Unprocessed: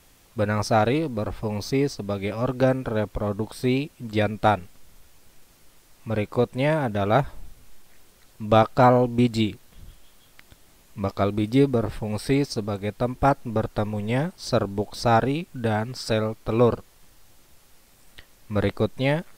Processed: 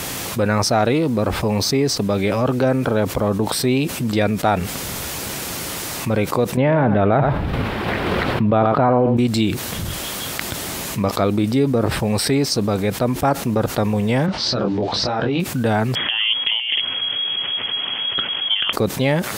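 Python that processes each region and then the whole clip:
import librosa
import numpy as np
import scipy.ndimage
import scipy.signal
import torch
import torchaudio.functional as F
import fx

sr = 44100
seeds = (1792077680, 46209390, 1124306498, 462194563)

y = fx.chain(x, sr, fx.air_absorb(metres=450.0),
    fx.echo_single(ms=91, db=-14.0),
    fx.env_flatten(amount_pct=70), at=(6.57, 9.17))
y = fx.chain(y, sr, fx.lowpass(hz=4900.0, slope=24),
    fx.over_compress(threshold_db=-28.0, ratio=-1.0),
    fx.detune_double(cents=25), at=(14.26, 15.4))
y = fx.chain(y, sr, fx.over_compress(threshold_db=-29.0, ratio=-0.5),
    fx.freq_invert(carrier_hz=3300),
    fx.doppler_dist(depth_ms=0.12), at=(15.95, 18.73))
y = scipy.signal.sosfilt(scipy.signal.butter(2, 96.0, 'highpass', fs=sr, output='sos'), y)
y = fx.env_flatten(y, sr, amount_pct=70)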